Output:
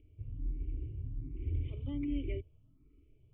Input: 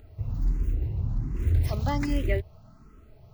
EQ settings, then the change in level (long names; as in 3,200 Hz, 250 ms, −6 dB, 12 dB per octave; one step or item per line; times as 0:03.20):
formant resonators in series i
phaser with its sweep stopped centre 1,100 Hz, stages 8
dynamic equaliser 490 Hz, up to +4 dB, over −58 dBFS, Q 2
+2.5 dB